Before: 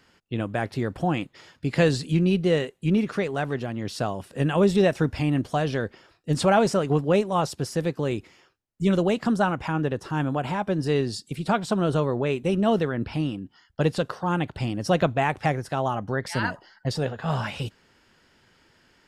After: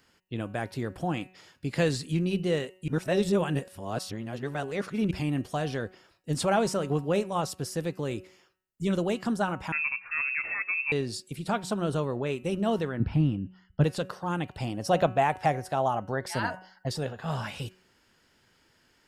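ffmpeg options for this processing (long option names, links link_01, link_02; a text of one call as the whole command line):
ffmpeg -i in.wav -filter_complex "[0:a]asettb=1/sr,asplit=3[link_01][link_02][link_03];[link_01]atrim=end=9.724[link_04];[link_02]atrim=start=9.72:end=10.92,asetpts=PTS-STARTPTS,afade=type=in:duration=0.004:curve=qsin,afade=type=out:start_time=1.196:duration=0.004:curve=qsin,lowpass=frequency=2400:width_type=q:width=0.5098,lowpass=frequency=2400:width_type=q:width=0.6013,lowpass=frequency=2400:width_type=q:width=0.9,lowpass=frequency=2400:width_type=q:width=2.563,afreqshift=-2800[link_05];[link_03]atrim=start=10.916[link_06];[link_04][link_05]acrossfade=duration=0.004:curve1=hsin:curve2=qsin[link_07];[link_07][link_06]acrossfade=duration=0.004:curve1=qsin:curve2=hsin,asettb=1/sr,asplit=3[link_08][link_09][link_10];[link_08]atrim=end=13.004[link_11];[link_09]atrim=start=13:end=13.84,asetpts=PTS-STARTPTS,afade=type=in:duration=0.004:curve=qsin,afade=type=out:start_time=0.836:duration=0.004:curve=qsin,bass=frequency=250:gain=12,treble=frequency=4000:gain=-13[link_12];[link_10]atrim=start=13.836[link_13];[link_11][link_12]acrossfade=duration=0.004:curve1=hsin:curve2=qsin[link_14];[link_14][link_13]acrossfade=duration=0.004:curve1=qsin:curve2=hsin,asettb=1/sr,asplit=3[link_15][link_16][link_17];[link_15]atrim=end=14.584[link_18];[link_16]atrim=start=14.58:end=16.88,asetpts=PTS-STARTPTS,afade=type=in:duration=0.004:curve=qsin,afade=type=out:start_time=2.296:duration=0.004:curve=qsin,equalizer=frequency=730:width=1.5:gain=7[link_19];[link_17]atrim=start=16.876[link_20];[link_18][link_19]acrossfade=duration=0.004:curve1=hsin:curve2=qsin[link_21];[link_21][link_20]acrossfade=duration=0.004:curve1=qsin:curve2=hsin,asplit=3[link_22][link_23][link_24];[link_22]atrim=end=2.882[link_25];[link_23]atrim=start=2.878:end=5.112,asetpts=PTS-STARTPTS,areverse[link_26];[link_24]atrim=start=5.108[link_27];[link_25][link_26]acrossfade=duration=0.004:curve1=hsin:curve2=hsin[link_28];[link_28][link_27]acrossfade=duration=0.004:curve1=hsin:curve2=hsin,highshelf=frequency=8000:gain=10,bandreject=frequency=185.9:width_type=h:width=4,bandreject=frequency=371.8:width_type=h:width=4,bandreject=frequency=557.7:width_type=h:width=4,bandreject=frequency=743.6:width_type=h:width=4,bandreject=frequency=929.5:width_type=h:width=4,bandreject=frequency=1115.4:width_type=h:width=4,bandreject=frequency=1301.3:width_type=h:width=4,bandreject=frequency=1487.2:width_type=h:width=4,bandreject=frequency=1673.1:width_type=h:width=4,bandreject=frequency=1859:width_type=h:width=4,bandreject=frequency=2044.9:width_type=h:width=4,bandreject=frequency=2230.8:width_type=h:width=4,bandreject=frequency=2416.7:width_type=h:width=4,bandreject=frequency=2602.6:width_type=h:width=4,bandreject=frequency=2788.5:width_type=h:width=4,bandreject=frequency=2974.4:width_type=h:width=4,volume=-5.5dB" out.wav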